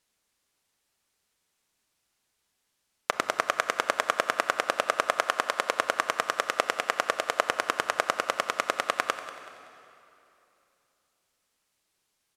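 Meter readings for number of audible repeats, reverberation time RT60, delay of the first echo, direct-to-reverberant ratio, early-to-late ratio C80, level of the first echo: 2, 2.9 s, 189 ms, 9.5 dB, 10.5 dB, −16.5 dB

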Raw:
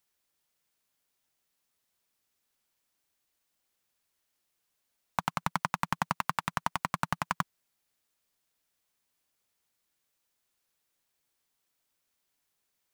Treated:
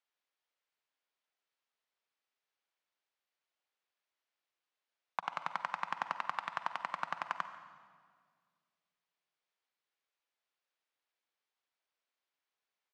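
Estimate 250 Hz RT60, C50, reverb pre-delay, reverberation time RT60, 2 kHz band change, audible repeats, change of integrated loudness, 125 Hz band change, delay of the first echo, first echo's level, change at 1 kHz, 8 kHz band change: 2.4 s, 10.0 dB, 39 ms, 1.9 s, −5.0 dB, 1, −6.0 dB, −23.0 dB, 143 ms, −20.0 dB, −5.5 dB, below −15 dB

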